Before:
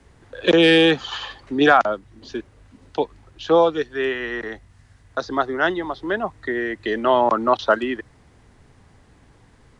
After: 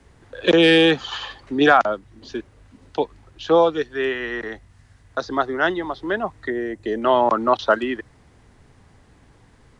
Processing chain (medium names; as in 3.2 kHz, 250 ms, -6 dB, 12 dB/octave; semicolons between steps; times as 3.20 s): 6.50–7.02 s: high-order bell 2.2 kHz -8.5 dB 2.5 oct